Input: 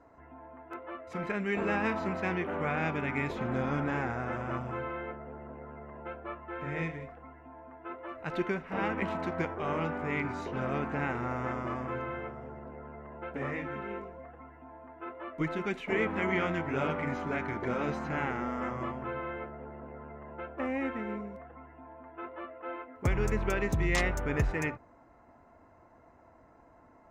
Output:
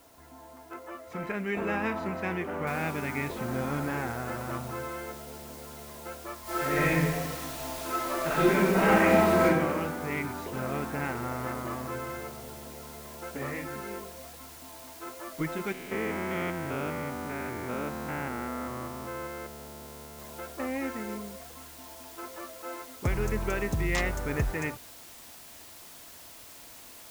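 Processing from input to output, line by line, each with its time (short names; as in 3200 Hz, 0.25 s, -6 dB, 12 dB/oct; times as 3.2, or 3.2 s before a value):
2.67 noise floor step -61 dB -49 dB
6.42–9.44 reverb throw, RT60 1.4 s, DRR -10 dB
15.72–20.19 stepped spectrum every 0.2 s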